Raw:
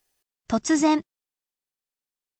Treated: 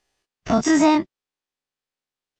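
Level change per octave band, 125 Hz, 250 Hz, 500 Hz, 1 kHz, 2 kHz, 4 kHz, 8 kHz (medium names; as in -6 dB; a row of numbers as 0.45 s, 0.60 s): +8.0 dB, +4.0 dB, +5.5 dB, +5.0 dB, +5.0 dB, +4.0 dB, +1.0 dB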